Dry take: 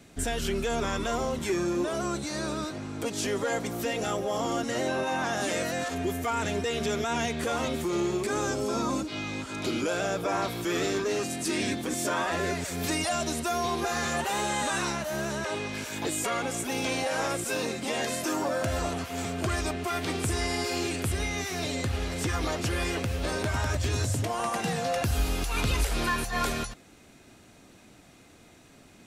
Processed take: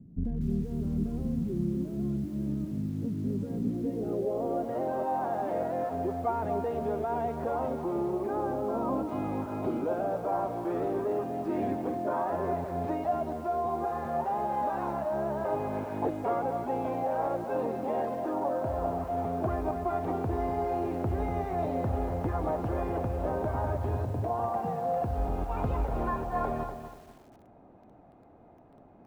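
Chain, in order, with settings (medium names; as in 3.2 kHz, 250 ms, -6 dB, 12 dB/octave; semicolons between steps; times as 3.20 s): low-pass sweep 190 Hz -> 800 Hz, 3.45–4.79 s; gain riding within 5 dB 0.5 s; bit-crushed delay 242 ms, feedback 35%, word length 8-bit, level -9 dB; trim -3.5 dB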